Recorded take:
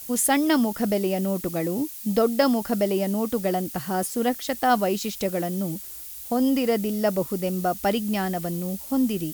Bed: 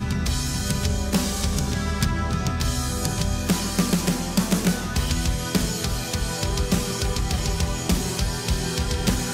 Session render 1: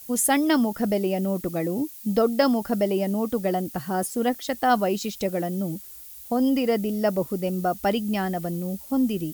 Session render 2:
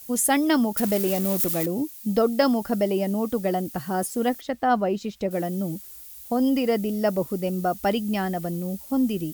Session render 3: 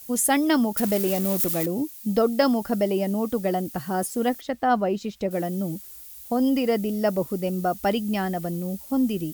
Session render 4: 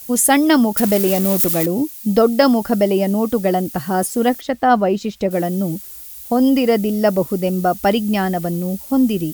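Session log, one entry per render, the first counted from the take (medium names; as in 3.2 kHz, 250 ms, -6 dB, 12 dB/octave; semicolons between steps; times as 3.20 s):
noise reduction 6 dB, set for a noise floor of -39 dBFS
0.77–1.66 s: zero-crossing glitches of -20 dBFS; 4.41–5.31 s: low-pass 1.7 kHz 6 dB/octave
no audible change
trim +7.5 dB; peak limiter -1 dBFS, peak gain reduction 0.5 dB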